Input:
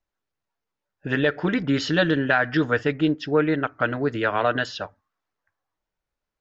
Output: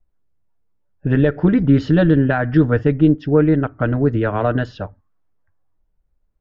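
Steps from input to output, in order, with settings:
spectral tilt −4.5 dB per octave

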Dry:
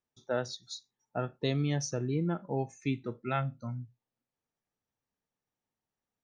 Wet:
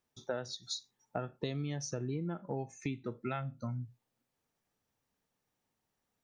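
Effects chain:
downward compressor 6 to 1, threshold −41 dBFS, peak gain reduction 15 dB
level +6.5 dB

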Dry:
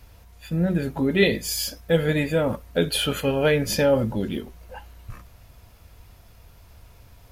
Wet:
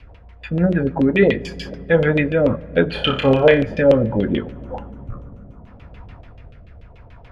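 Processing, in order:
0:04.52–0:05.67: gain on a spectral selection 1,500–5,600 Hz −13 dB
in parallel at +0.5 dB: speech leveller 0.5 s
on the sum: auto-filter low-pass saw down 6.9 Hz 480–3,100 Hz
rotating-speaker cabinet horn 6 Hz, later 0.7 Hz, at 0:01.30
0:02.90–0:03.62: flutter between parallel walls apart 5.2 metres, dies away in 0.32 s
on a send at −19 dB: convolution reverb RT60 3.5 s, pre-delay 3 ms

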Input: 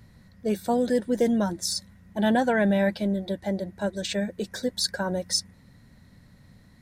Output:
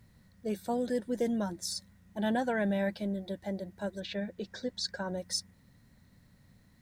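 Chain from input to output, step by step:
0:03.99–0:05.16: low-pass filter 4,100 Hz → 8,400 Hz 24 dB per octave
bit reduction 11 bits
level −8 dB

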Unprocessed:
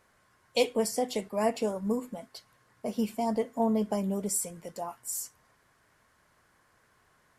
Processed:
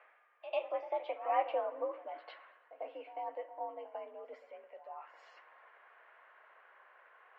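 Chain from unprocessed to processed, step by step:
source passing by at 0:01.66, 23 m/s, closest 13 metres
in parallel at 0 dB: downward compressor, threshold −43 dBFS, peak gain reduction 19 dB
on the sum: echo ahead of the sound 96 ms −13 dB
single-sideband voice off tune +72 Hz 430–2,700 Hz
reversed playback
upward compression, threshold −40 dBFS
reversed playback
spring reverb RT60 1.1 s, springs 57 ms, chirp 60 ms, DRR 16 dB
level −3 dB

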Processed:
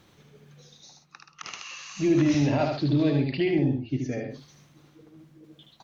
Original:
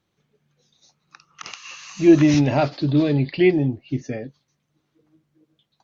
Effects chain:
brickwall limiter −13 dBFS, peak gain reduction 10 dB
reversed playback
upward compression, threshold −37 dBFS
reversed playback
loudspeakers that aren't time-aligned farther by 26 metres −4 dB, 45 metres −11 dB
level −3.5 dB

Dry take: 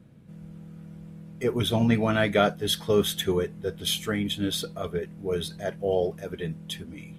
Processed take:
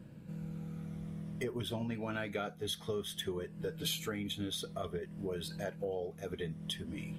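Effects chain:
rippled gain that drifts along the octave scale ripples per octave 1.3, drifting −0.56 Hz, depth 6 dB
downward compressor 6 to 1, threshold −37 dBFS, peak gain reduction 20 dB
0:03.59–0:04.03: comb filter 6.8 ms, depth 76%
level +1 dB

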